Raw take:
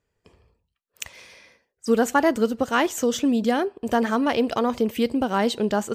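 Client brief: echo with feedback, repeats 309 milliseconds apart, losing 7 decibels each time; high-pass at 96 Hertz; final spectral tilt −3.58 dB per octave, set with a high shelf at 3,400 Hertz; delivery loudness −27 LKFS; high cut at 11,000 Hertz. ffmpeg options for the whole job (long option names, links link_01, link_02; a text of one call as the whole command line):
ffmpeg -i in.wav -af "highpass=96,lowpass=11000,highshelf=frequency=3400:gain=5.5,aecho=1:1:309|618|927|1236|1545:0.447|0.201|0.0905|0.0407|0.0183,volume=-5.5dB" out.wav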